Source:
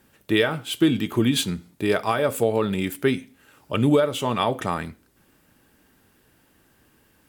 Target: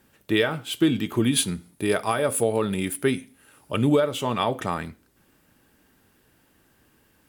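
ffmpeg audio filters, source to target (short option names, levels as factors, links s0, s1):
-filter_complex "[0:a]asettb=1/sr,asplit=3[s0][s1][s2];[s0]atrim=end=1.254[s3];[s1]atrim=start=1.25:end=3.82,asetpts=PTS-STARTPTS,afade=t=in:d=0.004:c=qsin,afade=t=out:st=2.566:d=0.004:c=qsin,equalizer=f=9900:t=o:w=0.22:g=14.5[s4];[s2]atrim=start=3.816[s5];[s3][s4]acrossfade=d=0.004:c1=hsin:c2=qsin[s6];[s6][s5]acrossfade=d=0.004:c1=qsin:c2=hsin,volume=0.841"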